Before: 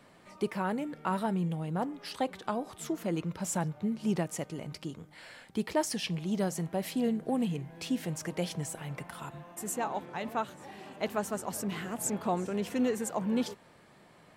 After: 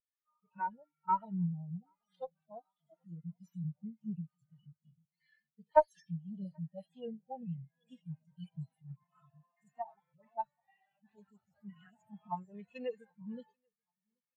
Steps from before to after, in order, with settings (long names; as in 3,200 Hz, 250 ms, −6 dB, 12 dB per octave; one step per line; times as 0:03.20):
harmonic-percussive split with one part muted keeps harmonic
guitar amp tone stack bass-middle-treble 10-0-10
harmonic generator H 2 −7 dB, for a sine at −30.5 dBFS
repeating echo 782 ms, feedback 57%, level −18 dB
every bin expanded away from the loudest bin 2.5 to 1
level +14.5 dB